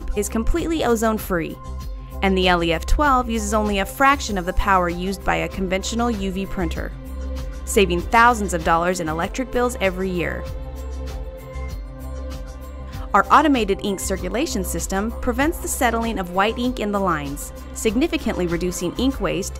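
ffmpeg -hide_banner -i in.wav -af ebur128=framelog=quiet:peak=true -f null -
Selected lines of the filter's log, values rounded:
Integrated loudness:
  I:         -20.7 LUFS
  Threshold: -31.4 LUFS
Loudness range:
  LRA:         4.2 LU
  Threshold: -41.3 LUFS
  LRA low:   -23.8 LUFS
  LRA high:  -19.6 LUFS
True peak:
  Peak:       -2.4 dBFS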